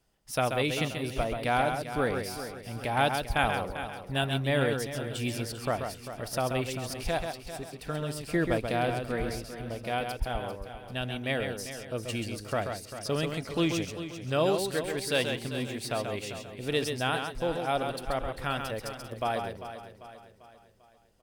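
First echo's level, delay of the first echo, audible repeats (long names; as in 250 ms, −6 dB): −6.0 dB, 134 ms, 8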